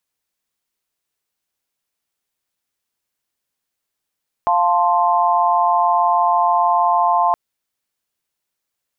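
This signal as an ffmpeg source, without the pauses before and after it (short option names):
-f lavfi -i "aevalsrc='0.141*(sin(2*PI*698.46*t)+sin(2*PI*880*t)+sin(2*PI*1046.5*t))':d=2.87:s=44100"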